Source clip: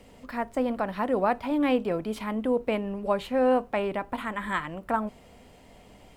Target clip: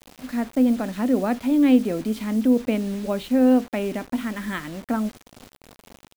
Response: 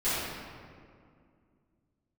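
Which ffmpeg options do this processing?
-af "equalizer=frequency=250:width_type=o:width=0.67:gain=12,equalizer=frequency=1000:width_type=o:width=0.67:gain=-8,equalizer=frequency=4000:width_type=o:width=0.67:gain=4,acrusher=bits=6:mix=0:aa=0.000001"

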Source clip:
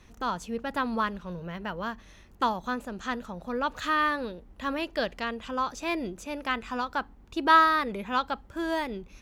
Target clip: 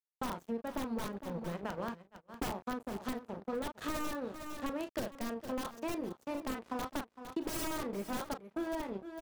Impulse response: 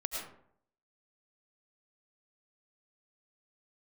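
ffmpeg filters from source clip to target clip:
-filter_complex "[0:a]asplit=2[link_01][link_02];[link_02]adelay=35,volume=-7dB[link_03];[link_01][link_03]amix=inputs=2:normalize=0,aeval=exprs='sgn(val(0))*max(abs(val(0))-0.0133,0)':channel_layout=same,highpass=frequency=320:poles=1,aeval=exprs='(mod(14.1*val(0)+1,2)-1)/14.1':channel_layout=same,aecho=1:1:458:0.141,agate=range=-23dB:threshold=-54dB:ratio=16:detection=peak,tiltshelf=frequency=970:gain=9.5,acompressor=threshold=-37dB:ratio=6,highshelf=frequency=8100:gain=4.5,volume=2.5dB"

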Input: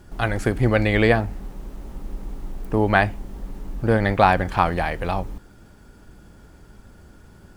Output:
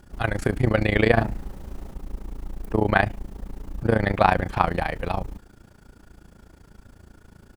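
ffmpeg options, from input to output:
ffmpeg -i in.wav -filter_complex "[0:a]tremolo=f=28:d=0.889,asplit=3[link_01][link_02][link_03];[link_01]afade=type=out:start_time=1.16:duration=0.02[link_04];[link_02]asplit=2[link_05][link_06];[link_06]adelay=44,volume=-2dB[link_07];[link_05][link_07]amix=inputs=2:normalize=0,afade=type=in:start_time=1.16:duration=0.02,afade=type=out:start_time=1.91:duration=0.02[link_08];[link_03]afade=type=in:start_time=1.91:duration=0.02[link_09];[link_04][link_08][link_09]amix=inputs=3:normalize=0,volume=1.5dB" out.wav

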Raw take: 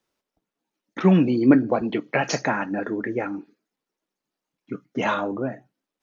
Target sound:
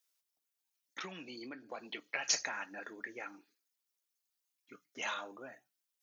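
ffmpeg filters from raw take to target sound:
ffmpeg -i in.wav -af "acompressor=threshold=-20dB:ratio=10,aderivative,volume=2.5dB" out.wav

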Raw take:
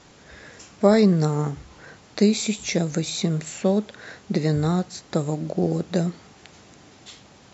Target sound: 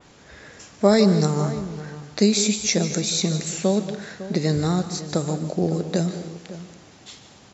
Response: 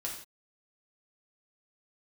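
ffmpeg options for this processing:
-filter_complex "[0:a]asplit=2[link_01][link_02];[link_02]adelay=553.9,volume=-14dB,highshelf=frequency=4000:gain=-12.5[link_03];[link_01][link_03]amix=inputs=2:normalize=0,asplit=2[link_04][link_05];[1:a]atrim=start_sample=2205,asetrate=37044,aresample=44100,adelay=149[link_06];[link_05][link_06]afir=irnorm=-1:irlink=0,volume=-13.5dB[link_07];[link_04][link_07]amix=inputs=2:normalize=0,adynamicequalizer=threshold=0.00501:dfrequency=5800:dqfactor=1:tfrequency=5800:tqfactor=1:attack=5:release=100:ratio=0.375:range=4:mode=boostabove:tftype=bell"

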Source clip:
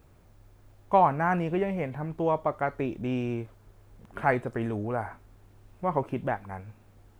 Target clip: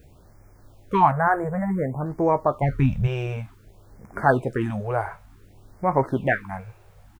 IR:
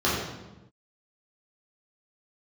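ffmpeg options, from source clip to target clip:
-filter_complex "[0:a]asettb=1/sr,asplit=3[link_01][link_02][link_03];[link_01]atrim=end=1.114[link_04];[link_02]atrim=start=1.11:end=2.06,asetpts=PTS-STARTPTS,afade=type=in:duration=0.004:curve=qsin,afade=type=out:start_time=0.946:duration=0.004:curve=qsin,asuperstop=centerf=3700:order=12:qfactor=0.74[link_05];[link_03]atrim=start=2.056[link_06];[link_04][link_05]acrossfade=duration=0.004:curve1=hsin:curve2=qsin[link_07];[link_07][link_06]acrossfade=duration=0.004:curve1=qsin:curve2=hsin,asettb=1/sr,asplit=3[link_08][link_09][link_10];[link_08]atrim=end=5.994[link_11];[link_09]atrim=start=5.99:end=6.42,asetpts=PTS-STARTPTS,afade=type=in:duration=0.004:curve=qsin,afade=type=out:start_time=0.426:duration=0.004:curve=qsin,equalizer=frequency=1900:width=1.1:gain=10.5[link_12];[link_10]atrim=start=6.416[link_13];[link_11][link_12]acrossfade=duration=0.004:curve1=hsin:curve2=qsin[link_14];[link_14][link_13]acrossfade=duration=0.004:curve1=qsin:curve2=hsin,asplit=2[link_15][link_16];[link_16]adelay=15,volume=-11dB[link_17];[link_15][link_17]amix=inputs=2:normalize=0,asplit=3[link_18][link_19][link_20];[link_18]afade=type=out:start_time=2.61:duration=0.02[link_21];[link_19]asubboost=boost=9:cutoff=150,afade=type=in:start_time=2.61:duration=0.02,afade=type=out:start_time=3.06:duration=0.02[link_22];[link_20]afade=type=in:start_time=3.06:duration=0.02[link_23];[link_21][link_22][link_23]amix=inputs=3:normalize=0,afftfilt=real='re*(1-between(b*sr/1024,230*pow(3500/230,0.5+0.5*sin(2*PI*0.55*pts/sr))/1.41,230*pow(3500/230,0.5+0.5*sin(2*PI*0.55*pts/sr))*1.41))':imag='im*(1-between(b*sr/1024,230*pow(3500/230,0.5+0.5*sin(2*PI*0.55*pts/sr))/1.41,230*pow(3500/230,0.5+0.5*sin(2*PI*0.55*pts/sr))*1.41))':win_size=1024:overlap=0.75,volume=6dB"

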